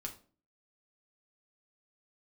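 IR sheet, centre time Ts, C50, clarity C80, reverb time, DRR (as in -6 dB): 12 ms, 12.0 dB, 17.0 dB, 0.40 s, 1.0 dB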